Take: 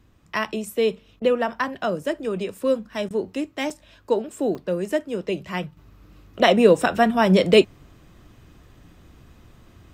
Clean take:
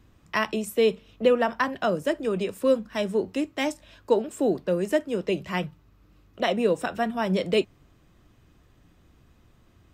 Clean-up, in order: interpolate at 3.70/4.55 s, 3.7 ms; interpolate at 1.20/3.09 s, 14 ms; gain correction -8.5 dB, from 5.77 s

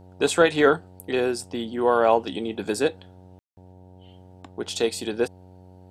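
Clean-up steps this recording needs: de-hum 92 Hz, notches 10; room tone fill 3.39–3.57 s

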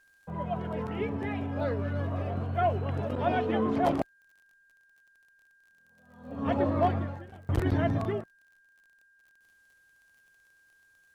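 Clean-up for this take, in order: clip repair -16 dBFS; de-click; band-stop 1.6 kHz, Q 30

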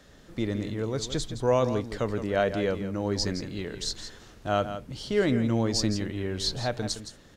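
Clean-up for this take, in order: inverse comb 166 ms -10.5 dB

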